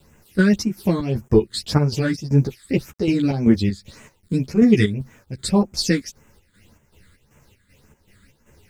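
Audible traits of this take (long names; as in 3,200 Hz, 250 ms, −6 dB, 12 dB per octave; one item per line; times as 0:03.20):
a quantiser's noise floor 10 bits, dither none
phaser sweep stages 8, 1.8 Hz, lowest notch 760–4,200 Hz
chopped level 2.6 Hz, depth 60%, duty 60%
a shimmering, thickened sound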